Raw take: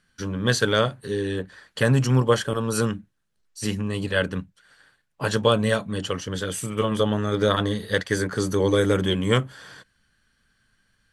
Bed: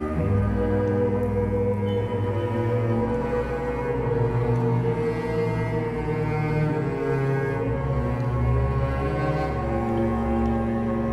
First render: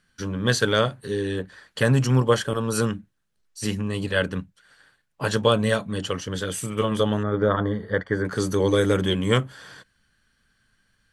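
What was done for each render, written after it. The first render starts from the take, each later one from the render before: 7.23–8.25 polynomial smoothing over 41 samples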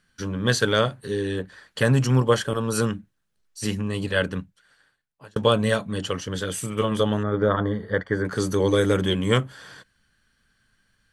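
4.3–5.36 fade out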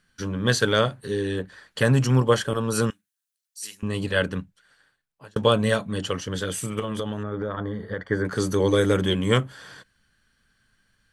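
2.9–3.83 differentiator; 6.79–8.11 compressor 5:1, threshold -25 dBFS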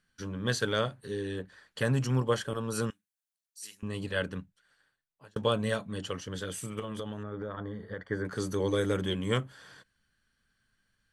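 gain -8.5 dB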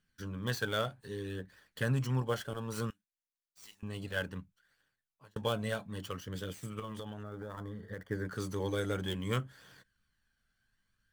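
switching dead time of 0.056 ms; flange 0.62 Hz, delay 0.3 ms, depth 1.2 ms, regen +55%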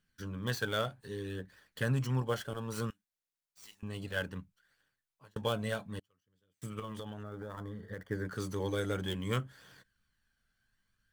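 5.99–6.62 flipped gate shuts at -41 dBFS, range -36 dB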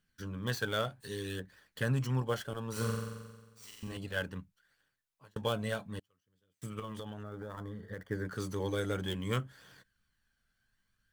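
1–1.4 high shelf 2400 Hz +11 dB; 2.72–3.97 flutter echo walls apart 7.7 m, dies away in 1.3 s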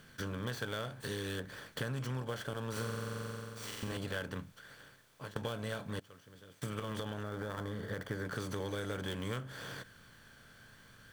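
per-bin compression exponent 0.6; compressor 5:1, threshold -35 dBFS, peak gain reduction 10 dB

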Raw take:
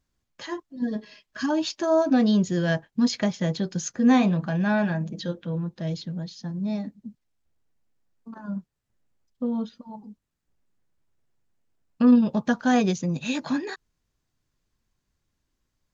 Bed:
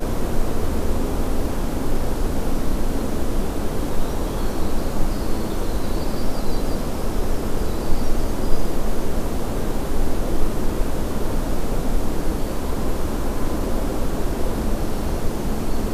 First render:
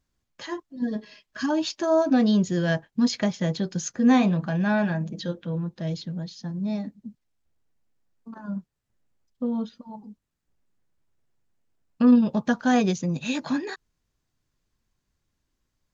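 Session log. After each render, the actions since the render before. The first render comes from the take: nothing audible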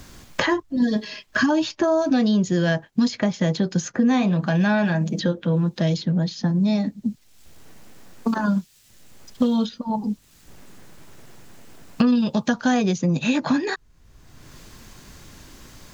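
in parallel at -3 dB: limiter -18 dBFS, peak gain reduction 9.5 dB; on the sum: three-band squash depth 100%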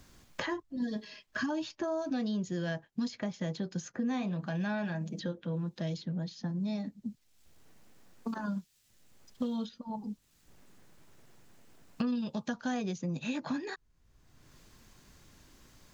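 gain -14 dB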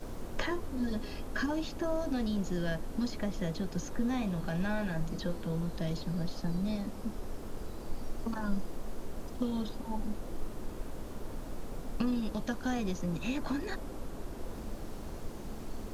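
add bed -18.5 dB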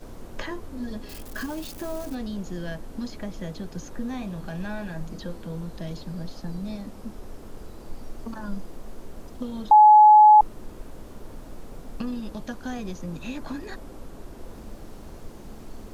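1.09–2.15 switching spikes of -32 dBFS; 9.71–10.41 bleep 849 Hz -8.5 dBFS

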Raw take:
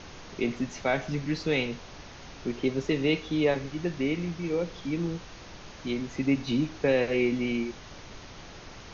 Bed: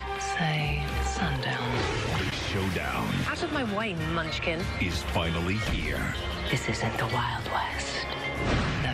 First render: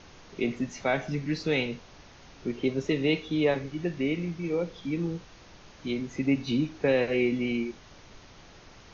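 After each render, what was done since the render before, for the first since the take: noise print and reduce 6 dB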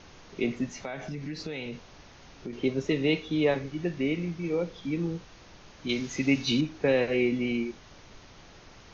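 0.8–2.53 compressor, threshold -32 dBFS; 5.89–6.61 high shelf 2200 Hz +12 dB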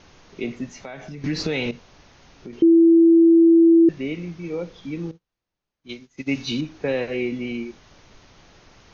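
1.24–1.71 gain +11.5 dB; 2.62–3.89 bleep 332 Hz -9.5 dBFS; 5.11–6.29 upward expander 2.5:1, over -46 dBFS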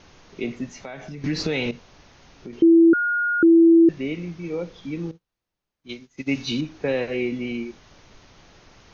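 2.93–3.43 bleep 1430 Hz -19.5 dBFS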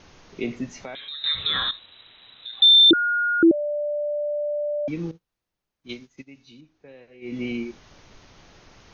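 0.95–2.91 inverted band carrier 3900 Hz; 3.51–4.88 bleep 590 Hz -23 dBFS; 6.08–7.4 dip -23 dB, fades 0.19 s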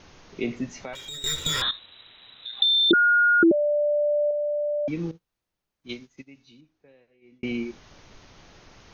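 0.93–1.62 minimum comb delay 2.1 ms; 2.56–4.31 comb 4.9 ms, depth 60%; 5.93–7.43 fade out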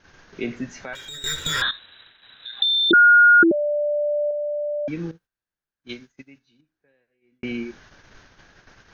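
gate -50 dBFS, range -10 dB; bell 1600 Hz +12.5 dB 0.35 oct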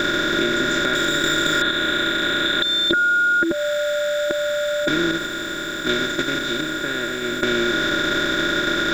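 per-bin compression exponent 0.2; compressor, threshold -16 dBFS, peak gain reduction 7.5 dB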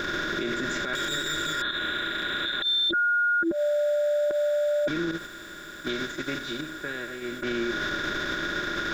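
per-bin expansion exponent 2; limiter -20 dBFS, peak gain reduction 11 dB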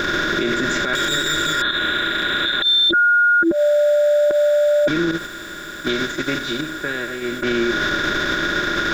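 gain +9 dB

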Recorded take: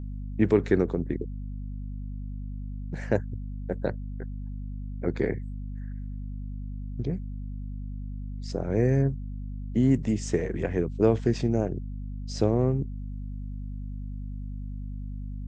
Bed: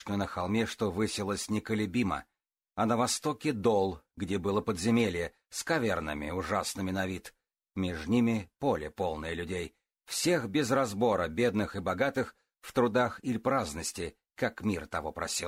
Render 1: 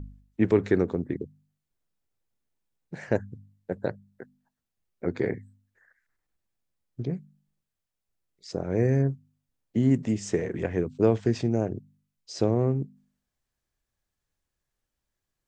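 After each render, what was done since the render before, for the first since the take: de-hum 50 Hz, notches 5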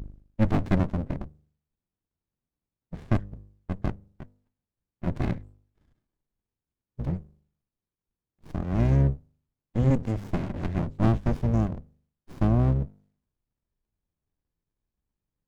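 octaver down 1 oct, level -2 dB; running maximum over 65 samples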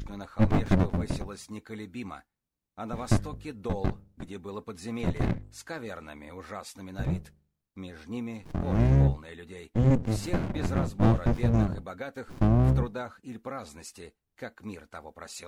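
add bed -9 dB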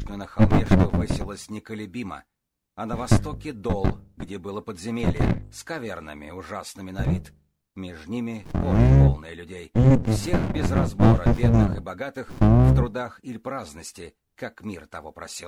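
gain +6 dB

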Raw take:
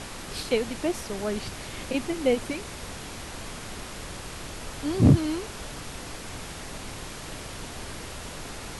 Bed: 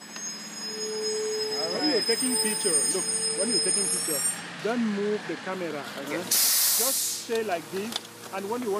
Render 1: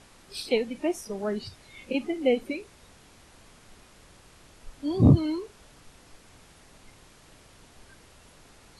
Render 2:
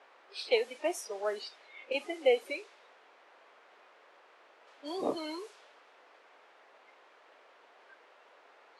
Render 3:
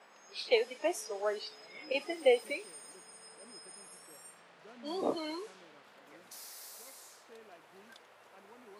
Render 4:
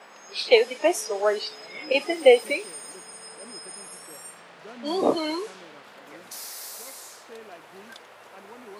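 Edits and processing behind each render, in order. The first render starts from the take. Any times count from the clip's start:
noise print and reduce 16 dB
low-pass opened by the level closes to 1900 Hz, open at -24.5 dBFS; HPF 460 Hz 24 dB/oct
add bed -27.5 dB
gain +11 dB

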